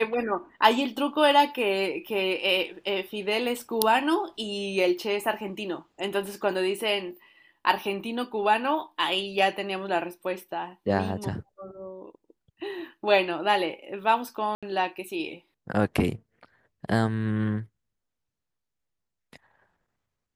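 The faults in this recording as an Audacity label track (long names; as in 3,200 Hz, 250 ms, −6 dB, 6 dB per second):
14.550000	14.630000	drop-out 76 ms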